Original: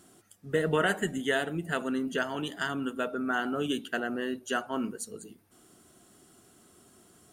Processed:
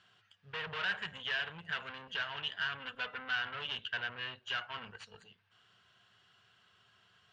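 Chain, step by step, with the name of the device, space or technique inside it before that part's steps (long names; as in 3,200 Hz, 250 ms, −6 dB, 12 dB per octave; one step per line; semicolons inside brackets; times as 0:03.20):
scooped metal amplifier (tube saturation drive 34 dB, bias 0.7; loudspeaker in its box 98–4,100 Hz, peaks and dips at 110 Hz +10 dB, 190 Hz +4 dB, 450 Hz +5 dB, 1,000 Hz +5 dB, 1,600 Hz +8 dB, 2,900 Hz +8 dB; guitar amp tone stack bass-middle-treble 10-0-10)
0:02.79–0:03.35: comb filter 4 ms, depth 52%
level +4.5 dB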